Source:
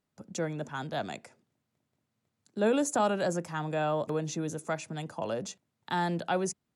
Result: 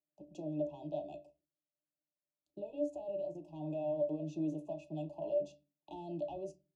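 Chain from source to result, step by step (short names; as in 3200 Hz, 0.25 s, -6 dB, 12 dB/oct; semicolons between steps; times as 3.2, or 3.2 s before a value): HPF 430 Hz 12 dB/oct; sample leveller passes 1; compressor 5:1, threshold -32 dBFS, peak gain reduction 9.5 dB; sample leveller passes 1; 1–3.56 level quantiser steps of 12 dB; brick-wall FIR band-stop 1100–2500 Hz; octave resonator D, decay 0.16 s; reverb, pre-delay 5 ms, DRR 8 dB; gain +6.5 dB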